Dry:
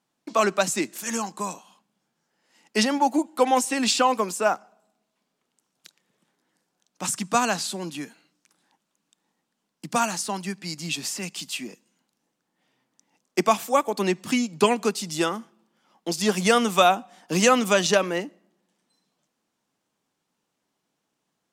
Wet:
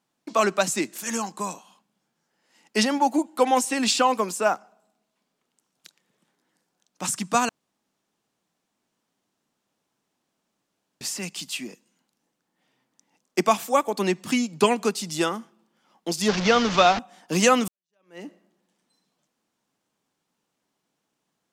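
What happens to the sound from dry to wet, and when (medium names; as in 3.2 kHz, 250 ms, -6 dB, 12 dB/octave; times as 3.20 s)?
7.49–11.01 s: room tone
16.28–16.99 s: one-bit delta coder 32 kbps, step -20.5 dBFS
17.68–18.26 s: fade in exponential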